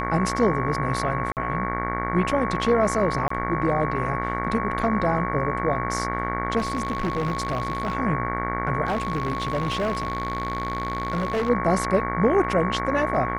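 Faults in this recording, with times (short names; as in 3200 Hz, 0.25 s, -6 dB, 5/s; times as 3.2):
buzz 60 Hz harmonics 38 -29 dBFS
tone 1100 Hz -28 dBFS
1.32–1.37 gap 48 ms
3.28–3.3 gap 24 ms
6.58–7.95 clipped -20.5 dBFS
8.85–11.5 clipped -20.5 dBFS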